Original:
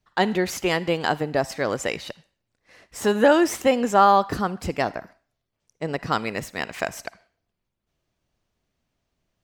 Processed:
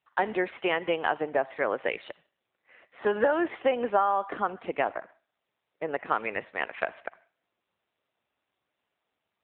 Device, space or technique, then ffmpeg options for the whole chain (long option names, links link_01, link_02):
voicemail: -filter_complex "[0:a]asettb=1/sr,asplit=3[link_01][link_02][link_03];[link_01]atrim=end=4.844[link_04];[link_02]atrim=start=4.84:end=5.99,asetpts=PTS-STARTPTS,afade=type=in:duration=0.004:curve=qsin,afade=type=out:start_time=1.146:duration=0.004:curve=qsin,bandreject=frequency=3000:width=12[link_05];[link_03]atrim=start=5.986[link_06];[link_04][link_05]acrossfade=duration=0.004:curve1=hsin:curve2=qsin[link_07];[link_07][link_06]acrossfade=duration=0.004:curve1=qsin:curve2=hsin,highpass=410,lowpass=3100,acompressor=threshold=-19dB:ratio=10" -ar 8000 -c:a libopencore_amrnb -b:a 7400